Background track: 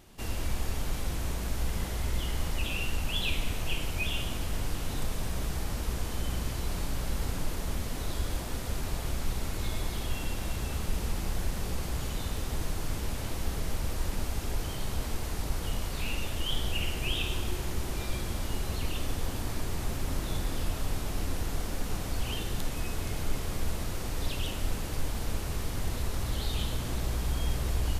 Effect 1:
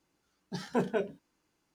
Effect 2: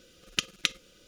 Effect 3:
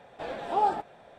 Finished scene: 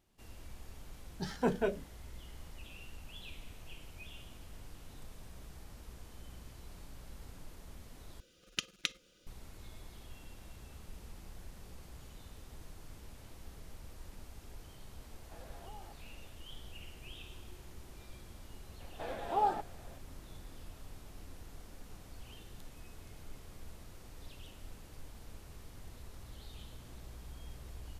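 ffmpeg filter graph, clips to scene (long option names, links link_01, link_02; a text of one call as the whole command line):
ffmpeg -i bed.wav -i cue0.wav -i cue1.wav -i cue2.wav -filter_complex "[3:a]asplit=2[link_01][link_02];[0:a]volume=-18.5dB[link_03];[link_01]acompressor=threshold=-37dB:ratio=6:attack=3.2:release=140:knee=1:detection=peak[link_04];[link_03]asplit=2[link_05][link_06];[link_05]atrim=end=8.204[link_07];[2:a]atrim=end=1.07,asetpts=PTS-STARTPTS,volume=-8dB[link_08];[link_06]atrim=start=9.266[link_09];[1:a]atrim=end=1.74,asetpts=PTS-STARTPTS,volume=-1.5dB,afade=type=in:duration=0.004:curve=hsin,afade=type=out:start_time=1.736:duration=0.004:curve=hsin,adelay=680[link_10];[link_04]atrim=end=1.18,asetpts=PTS-STARTPTS,volume=-14dB,afade=type=in:duration=0.004:curve=hsin,afade=type=out:start_time=1.176:duration=0.004:curve=hsin,adelay=15120[link_11];[link_02]atrim=end=1.18,asetpts=PTS-STARTPTS,volume=-5.5dB,afade=type=in:duration=0.004:curve=hsin,afade=type=out:start_time=1.176:duration=0.004:curve=hsin,adelay=18800[link_12];[link_07][link_08]acrossfade=duration=0.004:curve1=hsin:curve2=hsin[link_13];[link_13][link_09]acrossfade=duration=0.004:curve1=hsin:curve2=hsin[link_14];[link_14][link_10][link_11][link_12]amix=inputs=4:normalize=0" out.wav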